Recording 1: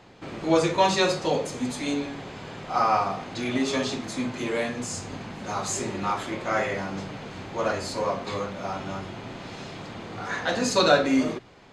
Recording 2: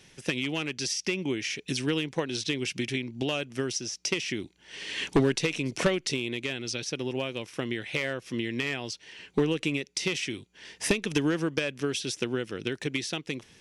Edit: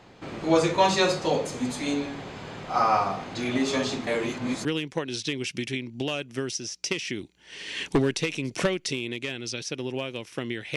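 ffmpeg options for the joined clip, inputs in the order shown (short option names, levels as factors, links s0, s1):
-filter_complex "[0:a]apad=whole_dur=10.76,atrim=end=10.76,asplit=2[s0][s1];[s0]atrim=end=4.072[s2];[s1]atrim=start=4.068:end=4.652,asetpts=PTS-STARTPTS,areverse[s3];[1:a]atrim=start=1.858:end=7.97[s4];[s2][s3]acrossfade=d=0.004:c1=hsin:c2=hsin[s5];[s5][s4]acrossfade=d=0.004:c1=hsin:c2=hsin"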